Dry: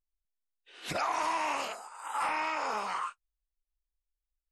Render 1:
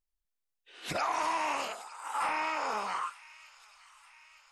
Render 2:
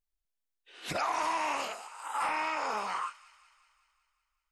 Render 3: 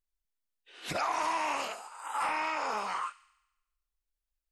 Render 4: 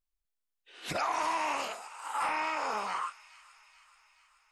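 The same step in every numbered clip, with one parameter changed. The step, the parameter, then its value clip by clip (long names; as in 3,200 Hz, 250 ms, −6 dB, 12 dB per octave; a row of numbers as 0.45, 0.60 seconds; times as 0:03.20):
delay with a high-pass on its return, delay time: 912, 187, 71, 429 milliseconds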